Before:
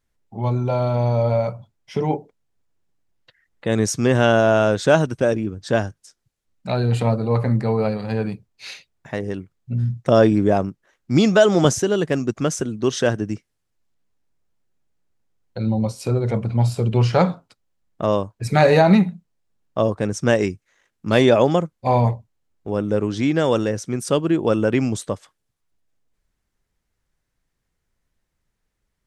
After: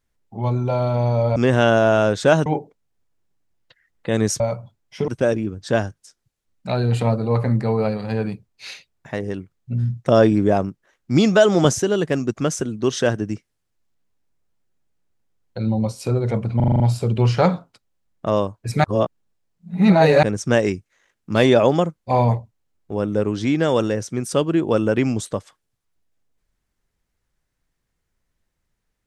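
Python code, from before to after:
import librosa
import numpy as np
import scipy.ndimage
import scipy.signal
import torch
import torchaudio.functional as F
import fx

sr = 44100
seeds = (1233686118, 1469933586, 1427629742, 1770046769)

y = fx.edit(x, sr, fx.swap(start_s=1.36, length_s=0.68, other_s=3.98, other_length_s=1.1),
    fx.stutter(start_s=16.56, slice_s=0.04, count=7),
    fx.reverse_span(start_s=18.6, length_s=1.39), tone=tone)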